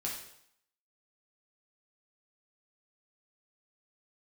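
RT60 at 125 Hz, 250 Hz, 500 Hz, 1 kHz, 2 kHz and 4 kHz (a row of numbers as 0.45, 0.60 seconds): 0.70, 0.65, 0.70, 0.70, 0.70, 0.65 seconds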